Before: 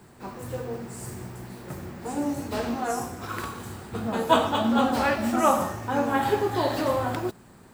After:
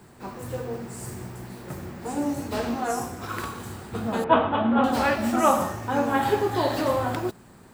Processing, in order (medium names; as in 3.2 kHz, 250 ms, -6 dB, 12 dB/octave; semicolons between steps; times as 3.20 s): 4.24–4.84 s: inverse Chebyshev low-pass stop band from 10 kHz, stop band 70 dB; trim +1 dB